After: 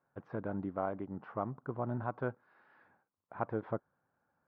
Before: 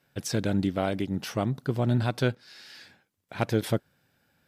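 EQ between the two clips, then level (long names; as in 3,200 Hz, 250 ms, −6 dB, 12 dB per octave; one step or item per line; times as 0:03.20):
transistor ladder low-pass 1,300 Hz, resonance 50%
low-shelf EQ 270 Hz −7 dB
+1.0 dB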